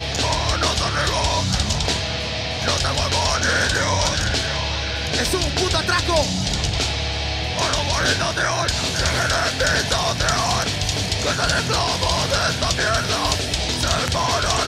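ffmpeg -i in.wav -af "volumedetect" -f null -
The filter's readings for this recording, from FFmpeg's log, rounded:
mean_volume: -20.8 dB
max_volume: -3.4 dB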